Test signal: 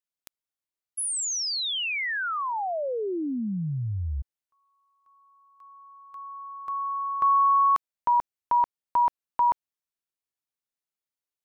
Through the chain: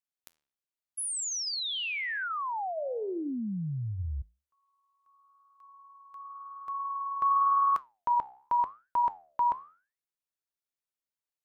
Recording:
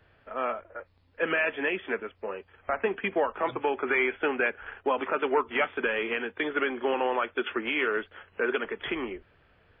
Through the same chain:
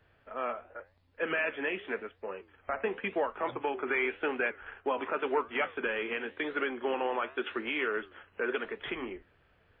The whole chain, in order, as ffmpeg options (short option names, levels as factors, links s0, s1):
-af "flanger=delay=6.5:depth=9.6:regen=-83:speed=0.9:shape=triangular"